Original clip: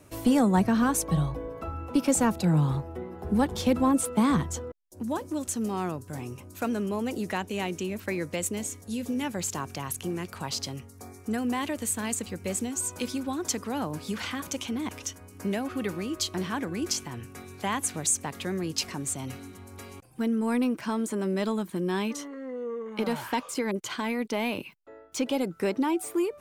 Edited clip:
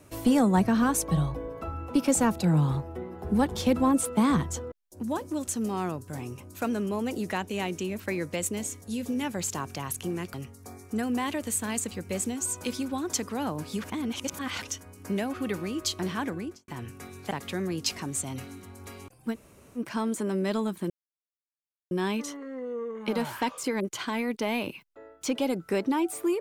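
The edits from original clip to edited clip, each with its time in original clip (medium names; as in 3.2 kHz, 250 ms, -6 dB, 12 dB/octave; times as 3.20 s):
10.34–10.69 s: delete
14.19–14.97 s: reverse
16.63–17.03 s: studio fade out
17.66–18.23 s: delete
20.25–20.70 s: room tone, crossfade 0.06 s
21.82 s: insert silence 1.01 s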